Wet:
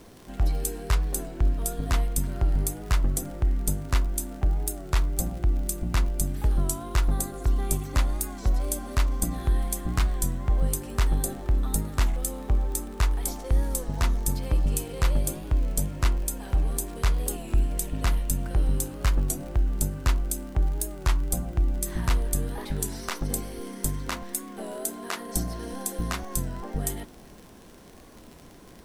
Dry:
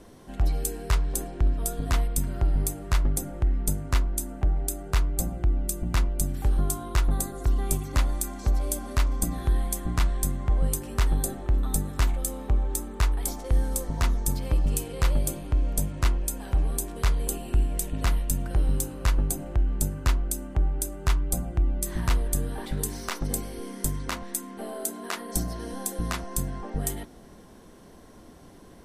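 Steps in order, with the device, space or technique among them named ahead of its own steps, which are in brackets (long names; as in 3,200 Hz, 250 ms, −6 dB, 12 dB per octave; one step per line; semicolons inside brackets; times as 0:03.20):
warped LP (wow of a warped record 33 1/3 rpm, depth 100 cents; surface crackle 55 per second −36 dBFS; pink noise bed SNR 33 dB)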